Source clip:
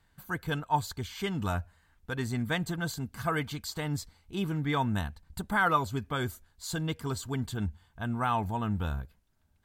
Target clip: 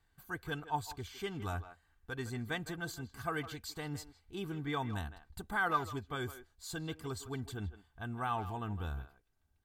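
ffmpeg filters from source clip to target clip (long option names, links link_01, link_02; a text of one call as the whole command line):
ffmpeg -i in.wav -filter_complex "[0:a]aecho=1:1:2.6:0.38,asplit=2[link_01][link_02];[link_02]adelay=160,highpass=300,lowpass=3400,asoftclip=type=hard:threshold=-22.5dB,volume=-12dB[link_03];[link_01][link_03]amix=inputs=2:normalize=0,volume=-7.5dB" out.wav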